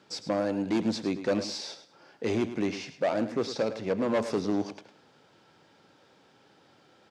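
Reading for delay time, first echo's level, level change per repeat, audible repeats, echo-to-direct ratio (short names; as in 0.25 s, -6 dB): 0.105 s, -12.0 dB, -12.5 dB, 2, -11.5 dB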